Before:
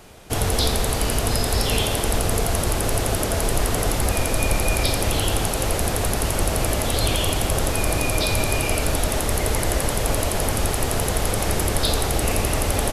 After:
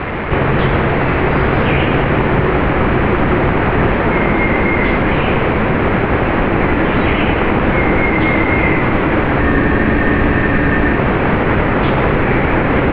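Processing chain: delta modulation 32 kbps, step -24.5 dBFS; mistuned SSB -310 Hz 250–2600 Hz; maximiser +16.5 dB; spectral freeze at 9.42, 1.54 s; gain -2.5 dB

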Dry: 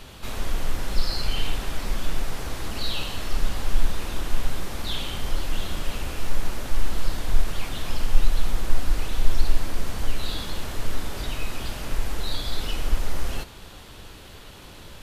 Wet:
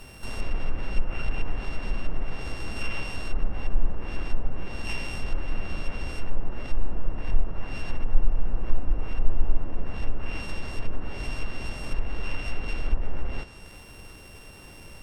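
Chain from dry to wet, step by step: sample sorter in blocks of 16 samples; treble ducked by the level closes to 1100 Hz, closed at -13 dBFS; gain -2 dB

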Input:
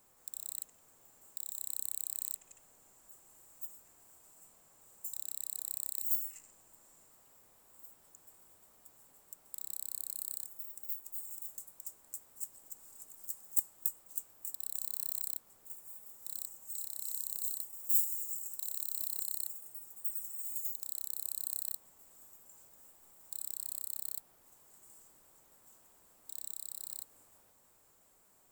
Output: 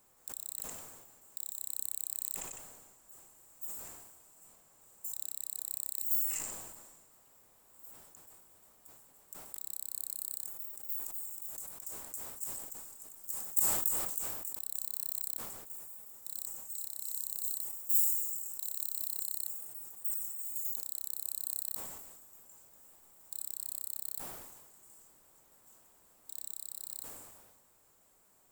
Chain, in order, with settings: sustainer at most 38 dB/s

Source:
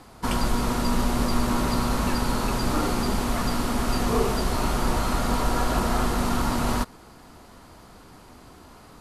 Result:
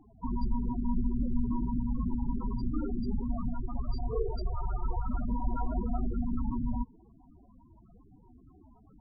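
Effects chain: 3.53–5.06 dynamic EQ 230 Hz, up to -8 dB, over -41 dBFS, Q 1.5; loudest bins only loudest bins 8; gain -4.5 dB

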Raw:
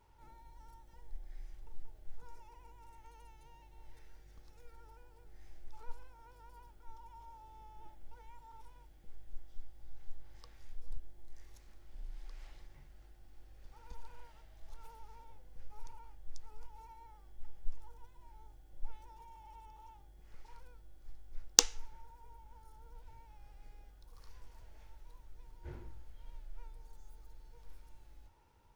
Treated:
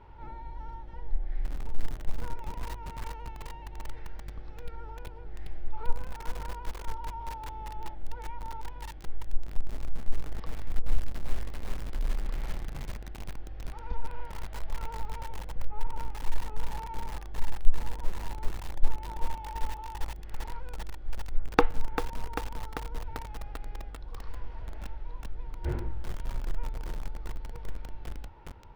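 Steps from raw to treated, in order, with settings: treble ducked by the level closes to 1300 Hz, closed at -31 dBFS; air absorption 350 m; lo-fi delay 0.393 s, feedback 80%, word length 8-bit, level -9 dB; gain +16 dB

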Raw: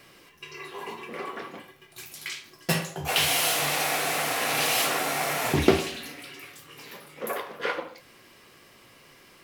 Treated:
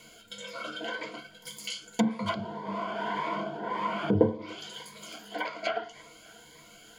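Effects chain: narrowing echo 0.399 s, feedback 73%, band-pass 920 Hz, level -21.5 dB; speed mistake 33 rpm record played at 45 rpm; treble ducked by the level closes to 570 Hz, closed at -21 dBFS; ripple EQ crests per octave 1.8, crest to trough 12 dB; cascading phaser rising 1.8 Hz

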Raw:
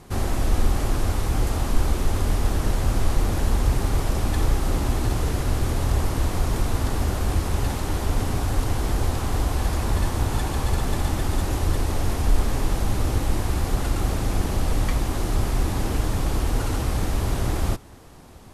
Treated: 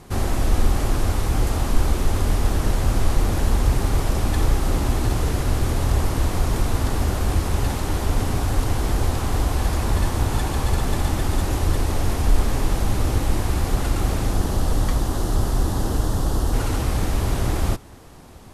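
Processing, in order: 14.29–16.52 bell 2300 Hz -6 dB -> -14.5 dB 0.51 oct; gain +2 dB

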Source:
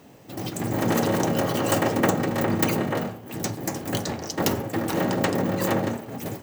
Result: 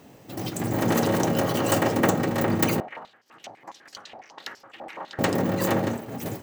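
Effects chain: 2.8–5.19 stepped band-pass 12 Hz 750–5000 Hz

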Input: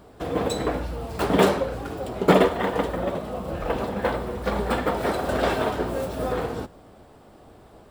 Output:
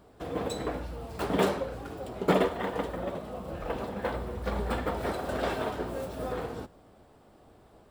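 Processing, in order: 4.13–5.13 bell 72 Hz +7 dB 1.2 oct; gain -7.5 dB

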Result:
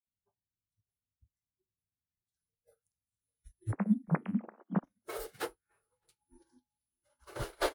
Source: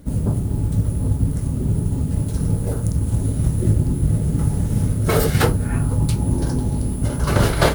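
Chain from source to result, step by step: 3.72–4.84 sine-wave speech; spectral noise reduction 28 dB; flange 0.55 Hz, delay 9.5 ms, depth 1.6 ms, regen -77%; echo 0.616 s -20.5 dB; upward expander 2.5:1, over -44 dBFS; gain -5 dB

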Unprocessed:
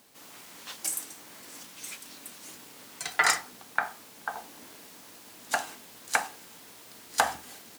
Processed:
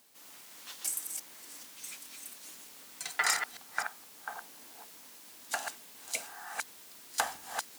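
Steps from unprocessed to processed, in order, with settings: reverse delay 0.255 s, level -5.5 dB; tilt +1.5 dB/oct; spectral repair 6.15–6.52, 700–2000 Hz both; gain -7.5 dB

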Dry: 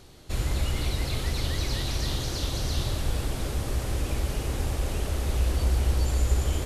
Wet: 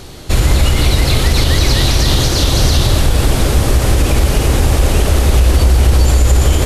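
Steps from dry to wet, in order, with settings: maximiser +19 dB; gain -1 dB

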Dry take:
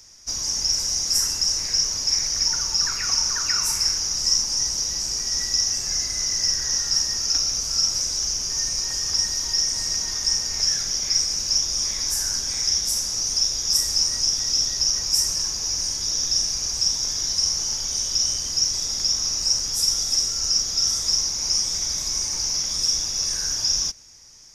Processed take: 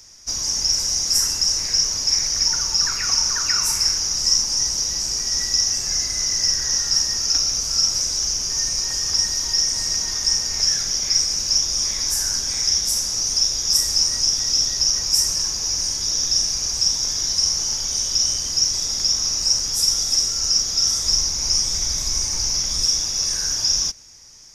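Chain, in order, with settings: 21.04–22.87 low shelf 90 Hz +9.5 dB; gain +2.5 dB

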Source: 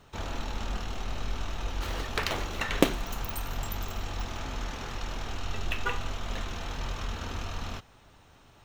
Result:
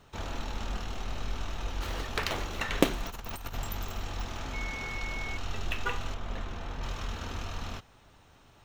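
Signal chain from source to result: 3.05–3.56 negative-ratio compressor -36 dBFS, ratio -0.5; 4.53–5.36 whine 2200 Hz -36 dBFS; 6.14–6.83 high shelf 2800 Hz -10 dB; gain -1.5 dB

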